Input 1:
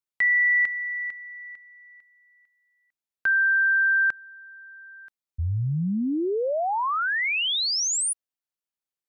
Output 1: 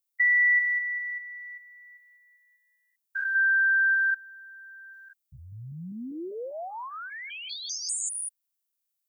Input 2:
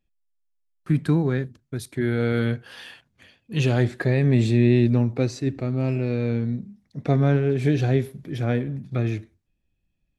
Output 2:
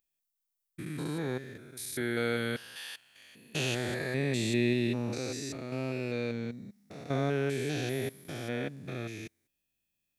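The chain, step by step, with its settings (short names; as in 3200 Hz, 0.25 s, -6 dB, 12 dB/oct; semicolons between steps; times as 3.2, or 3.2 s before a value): stepped spectrum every 0.2 s; RIAA curve recording; gain -3 dB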